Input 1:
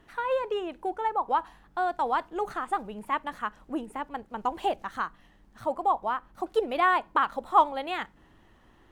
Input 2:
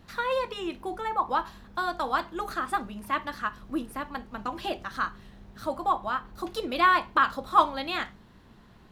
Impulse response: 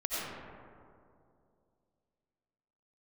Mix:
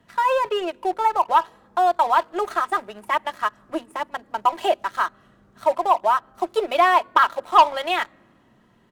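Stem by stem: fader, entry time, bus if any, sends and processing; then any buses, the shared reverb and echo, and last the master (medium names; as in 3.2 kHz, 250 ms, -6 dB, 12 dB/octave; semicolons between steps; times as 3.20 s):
+0.5 dB, 0.00 s, no send, high-pass 420 Hz 24 dB/octave; comb 3.1 ms, depth 70%; waveshaping leveller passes 2
-17.0 dB, 3.1 ms, polarity flipped, send -16.5 dB, ten-band graphic EQ 125 Hz +10 dB, 250 Hz +9 dB, 500 Hz +11 dB, 2 kHz +7 dB, 8 kHz +11 dB; compression 1.5:1, threshold -35 dBFS, peak gain reduction 9.5 dB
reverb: on, RT60 2.5 s, pre-delay 50 ms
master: none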